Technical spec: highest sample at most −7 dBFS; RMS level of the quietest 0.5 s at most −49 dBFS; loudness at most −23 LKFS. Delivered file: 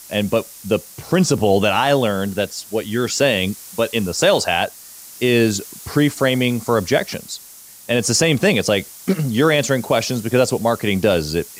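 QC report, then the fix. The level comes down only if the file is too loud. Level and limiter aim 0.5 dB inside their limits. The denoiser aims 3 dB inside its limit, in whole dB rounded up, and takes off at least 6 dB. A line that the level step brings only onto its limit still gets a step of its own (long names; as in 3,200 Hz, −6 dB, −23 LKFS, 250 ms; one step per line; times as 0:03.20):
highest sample −4.0 dBFS: out of spec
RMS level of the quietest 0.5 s −41 dBFS: out of spec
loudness −18.5 LKFS: out of spec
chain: broadband denoise 6 dB, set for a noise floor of −41 dBFS
level −5 dB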